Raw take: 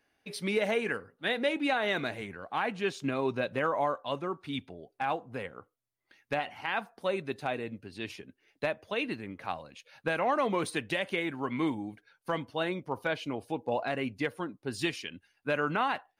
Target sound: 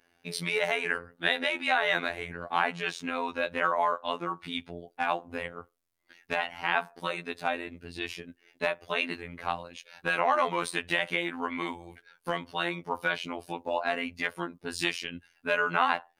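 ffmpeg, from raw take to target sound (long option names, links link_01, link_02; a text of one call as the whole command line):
ffmpeg -i in.wav -filter_complex "[0:a]acrossover=split=650|5000[link_01][link_02][link_03];[link_01]acompressor=threshold=-42dB:ratio=5[link_04];[link_04][link_02][link_03]amix=inputs=3:normalize=0,afftfilt=real='hypot(re,im)*cos(PI*b)':imag='0':win_size=2048:overlap=0.75,adynamicequalizer=threshold=0.00316:dfrequency=3400:dqfactor=0.7:tfrequency=3400:tqfactor=0.7:attack=5:release=100:ratio=0.375:range=2:mode=cutabove:tftype=highshelf,volume=8.5dB" out.wav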